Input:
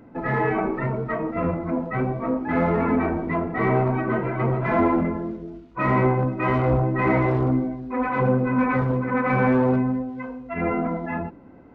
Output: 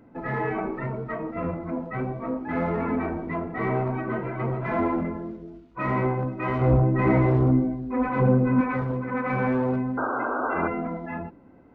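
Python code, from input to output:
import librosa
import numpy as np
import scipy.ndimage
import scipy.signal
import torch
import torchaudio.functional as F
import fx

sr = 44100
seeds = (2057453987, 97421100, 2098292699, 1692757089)

y = fx.low_shelf(x, sr, hz=480.0, db=8.0, at=(6.61, 8.61))
y = fx.spec_paint(y, sr, seeds[0], shape='noise', start_s=9.97, length_s=0.71, low_hz=230.0, high_hz=1600.0, level_db=-22.0)
y = y * librosa.db_to_amplitude(-5.0)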